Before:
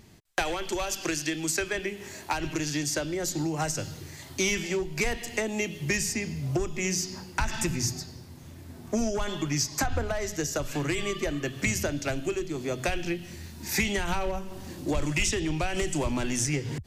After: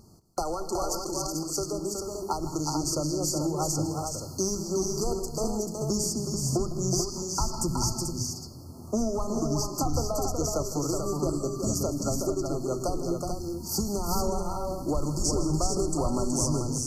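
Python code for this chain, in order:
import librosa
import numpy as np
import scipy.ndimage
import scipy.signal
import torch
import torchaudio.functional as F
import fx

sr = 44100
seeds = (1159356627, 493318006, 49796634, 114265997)

y = fx.over_compress(x, sr, threshold_db=-34.0, ratio=-1.0, at=(0.93, 1.54))
y = fx.brickwall_bandstop(y, sr, low_hz=1400.0, high_hz=4200.0)
y = fx.dynamic_eq(y, sr, hz=5500.0, q=0.84, threshold_db=-42.0, ratio=4.0, max_db=-6, at=(9.01, 9.8))
y = fx.echo_multitap(y, sr, ms=(158, 216, 371, 438), db=(-14.0, -19.0, -5.0, -6.0))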